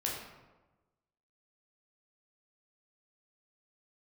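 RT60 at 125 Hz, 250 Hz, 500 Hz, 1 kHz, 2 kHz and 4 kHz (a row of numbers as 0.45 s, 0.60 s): 1.3 s, 1.3 s, 1.2 s, 1.1 s, 0.90 s, 0.65 s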